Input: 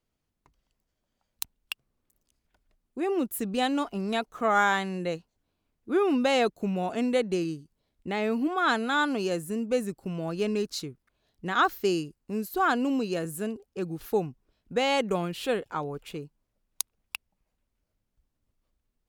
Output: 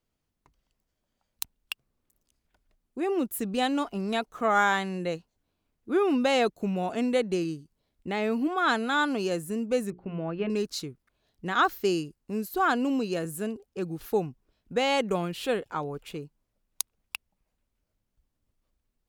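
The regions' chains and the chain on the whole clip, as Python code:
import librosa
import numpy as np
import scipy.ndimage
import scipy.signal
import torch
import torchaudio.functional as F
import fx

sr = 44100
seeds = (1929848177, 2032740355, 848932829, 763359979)

y = fx.chain(x, sr, fx.lowpass(hz=2700.0, slope=24),
    fx.hum_notches(base_hz=60, count=7), at=(9.9, 10.5))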